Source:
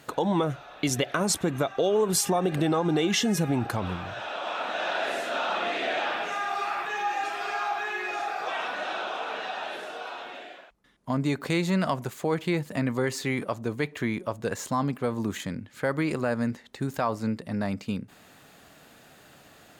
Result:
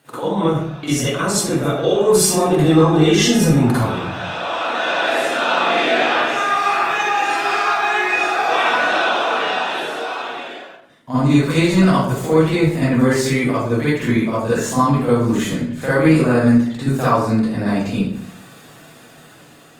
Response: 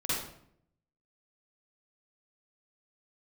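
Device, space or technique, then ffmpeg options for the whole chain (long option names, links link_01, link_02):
far-field microphone of a smart speaker: -filter_complex "[0:a]equalizer=frequency=9100:width=1.4:gain=4[link_01];[1:a]atrim=start_sample=2205[link_02];[link_01][link_02]afir=irnorm=-1:irlink=0,highpass=frequency=92:width=0.5412,highpass=frequency=92:width=1.3066,dynaudnorm=framelen=720:gausssize=5:maxgain=11dB,volume=-1dB" -ar 48000 -c:a libopus -b:a 32k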